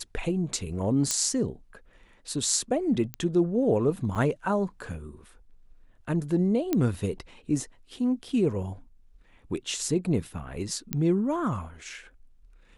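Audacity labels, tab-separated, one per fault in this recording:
1.110000	1.110000	pop -11 dBFS
3.140000	3.140000	pop -17 dBFS
4.150000	4.160000	gap 6.2 ms
6.730000	6.730000	pop -12 dBFS
10.930000	10.930000	pop -12 dBFS

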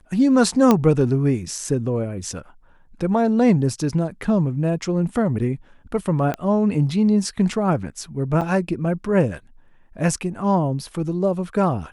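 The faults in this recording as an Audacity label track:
0.710000	0.710000	pop -3 dBFS
6.340000	6.340000	pop -12 dBFS
8.410000	8.420000	gap 5.4 ms

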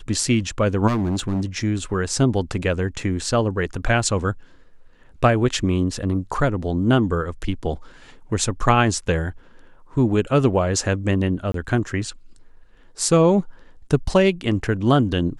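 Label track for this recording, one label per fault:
0.870000	1.410000	clipped -18.5 dBFS
11.520000	11.540000	gap 23 ms

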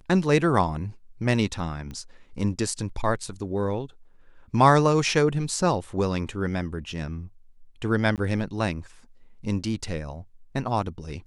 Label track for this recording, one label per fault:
1.910000	1.910000	pop -25 dBFS
8.160000	8.180000	gap 18 ms

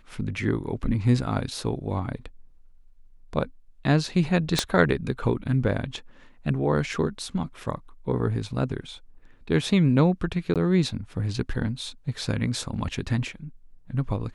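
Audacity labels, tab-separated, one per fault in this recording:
4.590000	4.590000	pop -6 dBFS
10.540000	10.560000	gap 17 ms

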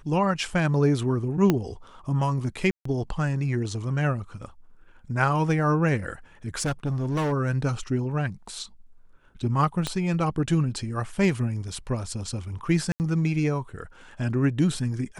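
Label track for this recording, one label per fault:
1.500000	1.500000	pop -8 dBFS
2.710000	2.850000	gap 0.144 s
6.590000	7.330000	clipped -22.5 dBFS
9.870000	9.870000	pop -13 dBFS
12.920000	13.000000	gap 79 ms

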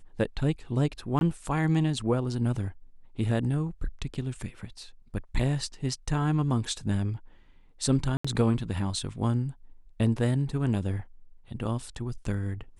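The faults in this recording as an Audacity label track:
1.190000	1.210000	gap 21 ms
8.170000	8.240000	gap 75 ms

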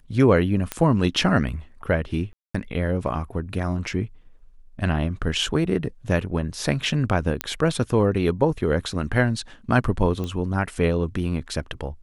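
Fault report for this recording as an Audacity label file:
0.720000	0.720000	pop -10 dBFS
2.330000	2.540000	gap 0.215 s
7.410000	7.410000	pop -7 dBFS
10.240000	10.240000	pop -18 dBFS

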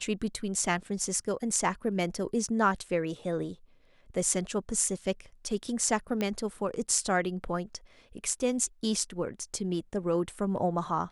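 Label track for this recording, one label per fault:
6.210000	6.210000	pop -17 dBFS

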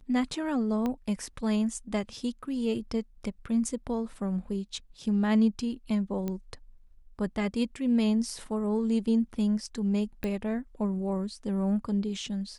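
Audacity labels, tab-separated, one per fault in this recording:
0.860000	0.860000	pop -19 dBFS
6.280000	6.280000	pop -20 dBFS
10.240000	10.240000	pop -19 dBFS

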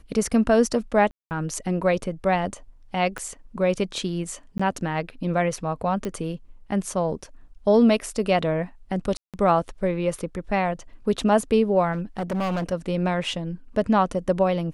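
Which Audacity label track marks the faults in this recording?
1.110000	1.310000	gap 0.199 s
3.180000	3.180000	pop -18 dBFS
4.580000	4.590000	gap 15 ms
6.050000	6.050000	pop -17 dBFS
9.170000	9.340000	gap 0.167 s
11.920000	12.730000	clipped -22.5 dBFS

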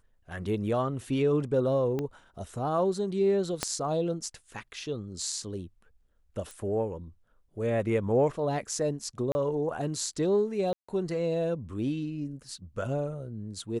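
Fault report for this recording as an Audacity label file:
1.990000	1.990000	pop -20 dBFS
3.630000	3.630000	pop -12 dBFS
6.510000	6.510000	pop
9.320000	9.350000	gap 30 ms
10.730000	10.880000	gap 0.155 s

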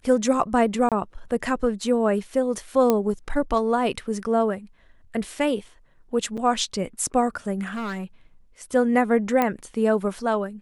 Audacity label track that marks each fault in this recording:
0.890000	0.920000	gap 27 ms
2.900000	2.900000	pop -7 dBFS
6.370000	6.380000	gap 6.6 ms
7.660000	8.040000	clipped -27 dBFS
9.420000	9.420000	pop -9 dBFS

